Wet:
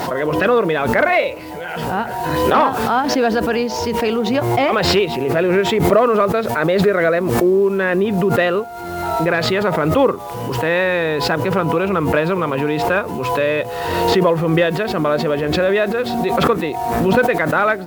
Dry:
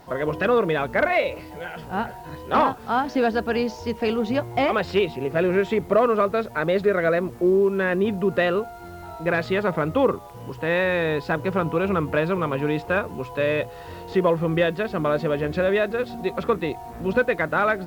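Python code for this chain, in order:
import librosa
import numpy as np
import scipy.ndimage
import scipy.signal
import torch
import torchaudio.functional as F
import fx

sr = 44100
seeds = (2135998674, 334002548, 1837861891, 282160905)

y = fx.highpass(x, sr, hz=180.0, slope=6)
y = fx.pre_swell(y, sr, db_per_s=30.0)
y = y * 10.0 ** (5.0 / 20.0)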